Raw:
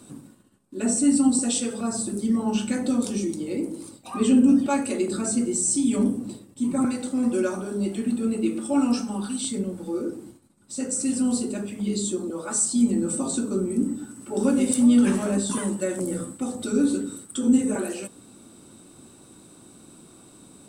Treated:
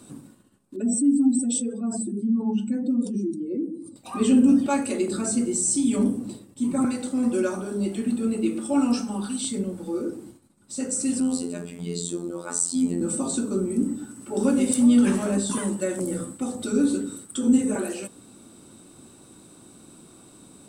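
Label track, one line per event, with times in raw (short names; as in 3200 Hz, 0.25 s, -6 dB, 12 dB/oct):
0.760000	3.960000	spectral contrast raised exponent 1.8
11.200000	13.010000	robotiser 86.3 Hz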